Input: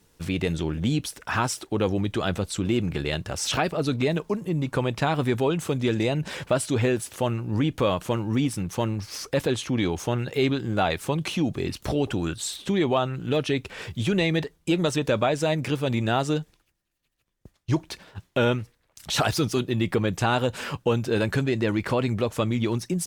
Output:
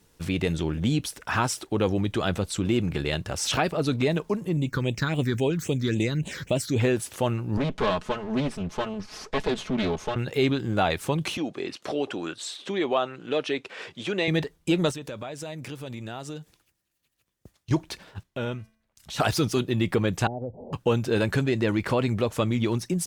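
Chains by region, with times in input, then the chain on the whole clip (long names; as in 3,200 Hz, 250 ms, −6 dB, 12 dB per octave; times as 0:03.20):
0:04.57–0:06.80: high-shelf EQ 5,300 Hz +7.5 dB + notch filter 4,900 Hz, Q 21 + all-pass phaser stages 6, 3.7 Hz, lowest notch 680–1,500 Hz
0:07.57–0:10.16: lower of the sound and its delayed copy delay 4.7 ms + high-frequency loss of the air 72 metres + highs frequency-modulated by the lows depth 0.15 ms
0:11.37–0:14.28: high-pass filter 340 Hz + high-frequency loss of the air 66 metres + notch filter 890 Hz, Q 24
0:14.91–0:17.71: high-pass filter 53 Hz + high-shelf EQ 4,900 Hz +5.5 dB + downward compressor 2.5 to 1, threshold −39 dBFS
0:18.23–0:19.20: low-shelf EQ 140 Hz +6 dB + tuned comb filter 220 Hz, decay 0.54 s, harmonics odd, mix 70%
0:20.27–0:20.73: Butterworth low-pass 790 Hz 72 dB per octave + downward compressor 2.5 to 1, threshold −33 dBFS
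whole clip: no processing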